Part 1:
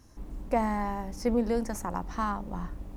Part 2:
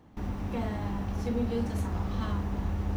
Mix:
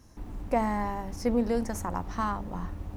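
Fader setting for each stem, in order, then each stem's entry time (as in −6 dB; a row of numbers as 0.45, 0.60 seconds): +0.5, −11.5 decibels; 0.00, 0.00 seconds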